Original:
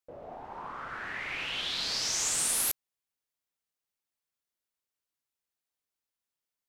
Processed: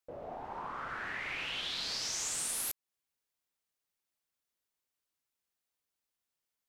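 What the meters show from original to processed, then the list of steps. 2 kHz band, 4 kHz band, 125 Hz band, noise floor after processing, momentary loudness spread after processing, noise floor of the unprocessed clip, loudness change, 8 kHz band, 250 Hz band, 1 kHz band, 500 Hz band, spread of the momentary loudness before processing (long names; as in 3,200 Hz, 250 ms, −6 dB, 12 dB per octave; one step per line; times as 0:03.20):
−3.0 dB, −5.0 dB, −3.0 dB, below −85 dBFS, 11 LU, below −85 dBFS, −6.0 dB, −6.5 dB, −3.0 dB, −1.5 dB, −1.5 dB, 17 LU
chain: downward compressor 2.5 to 1, threshold −38 dBFS, peak gain reduction 8.5 dB
level +1 dB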